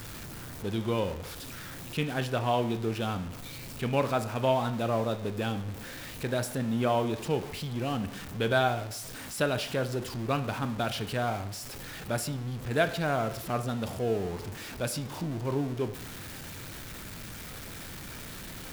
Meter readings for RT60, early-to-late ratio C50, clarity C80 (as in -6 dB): 0.75 s, 13.0 dB, 15.5 dB